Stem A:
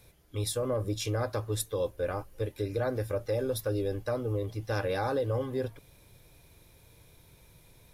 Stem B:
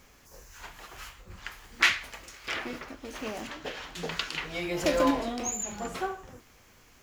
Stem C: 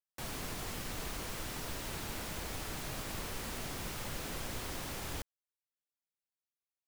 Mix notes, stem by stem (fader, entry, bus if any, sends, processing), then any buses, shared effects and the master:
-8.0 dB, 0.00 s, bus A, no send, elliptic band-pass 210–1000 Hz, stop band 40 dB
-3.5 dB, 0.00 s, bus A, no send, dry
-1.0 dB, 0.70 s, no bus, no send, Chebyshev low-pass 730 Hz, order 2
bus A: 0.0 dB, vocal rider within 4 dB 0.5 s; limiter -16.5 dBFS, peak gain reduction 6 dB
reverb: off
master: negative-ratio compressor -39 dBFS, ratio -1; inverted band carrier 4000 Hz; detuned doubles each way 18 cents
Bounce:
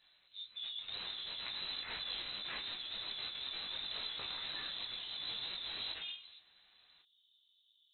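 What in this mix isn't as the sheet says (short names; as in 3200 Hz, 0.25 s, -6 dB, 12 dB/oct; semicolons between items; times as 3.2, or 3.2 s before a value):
stem B -3.5 dB -> -11.5 dB; stem C: missing Chebyshev low-pass 730 Hz, order 2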